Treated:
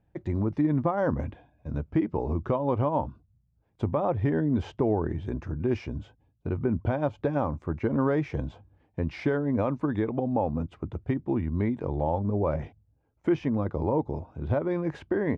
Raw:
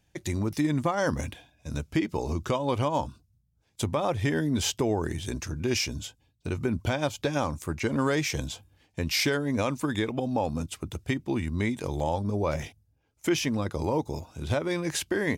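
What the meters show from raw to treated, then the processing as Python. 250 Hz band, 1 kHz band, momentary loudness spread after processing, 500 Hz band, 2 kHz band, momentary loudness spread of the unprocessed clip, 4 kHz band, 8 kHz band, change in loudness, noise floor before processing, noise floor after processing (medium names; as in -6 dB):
+1.5 dB, -0.5 dB, 10 LU, +1.5 dB, -7.5 dB, 10 LU, under -15 dB, under -30 dB, +0.5 dB, -70 dBFS, -70 dBFS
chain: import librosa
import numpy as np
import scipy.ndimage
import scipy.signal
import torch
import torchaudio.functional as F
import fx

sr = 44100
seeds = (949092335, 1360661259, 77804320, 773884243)

y = scipy.signal.sosfilt(scipy.signal.butter(2, 1100.0, 'lowpass', fs=sr, output='sos'), x)
y = y * 10.0 ** (1.5 / 20.0)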